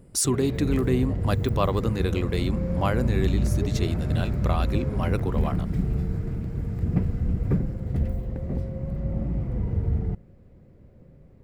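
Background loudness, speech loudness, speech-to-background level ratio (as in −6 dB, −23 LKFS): −27.5 LKFS, −28.0 LKFS, −0.5 dB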